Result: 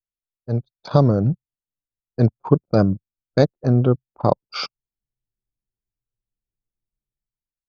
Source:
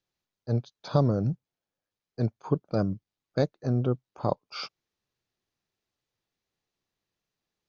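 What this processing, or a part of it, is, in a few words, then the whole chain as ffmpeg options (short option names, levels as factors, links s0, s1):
voice memo with heavy noise removal: -af "anlmdn=0.631,dynaudnorm=f=130:g=9:m=5.31"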